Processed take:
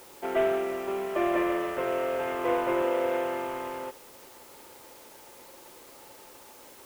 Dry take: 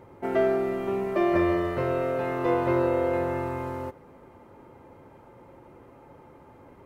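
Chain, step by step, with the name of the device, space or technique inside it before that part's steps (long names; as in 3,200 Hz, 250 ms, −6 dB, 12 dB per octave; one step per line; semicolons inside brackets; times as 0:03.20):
army field radio (band-pass filter 380–2,800 Hz; variable-slope delta modulation 16 kbit/s; white noise bed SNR 22 dB)
0:02.81–0:03.47: high-pass filter 85 Hz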